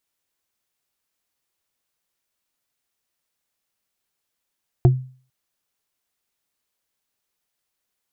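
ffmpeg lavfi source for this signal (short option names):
-f lavfi -i "aevalsrc='0.447*pow(10,-3*t/0.42)*sin(2*PI*129*t)+0.224*pow(10,-3*t/0.124)*sin(2*PI*355.7*t)+0.112*pow(10,-3*t/0.055)*sin(2*PI*697.1*t)':d=0.45:s=44100"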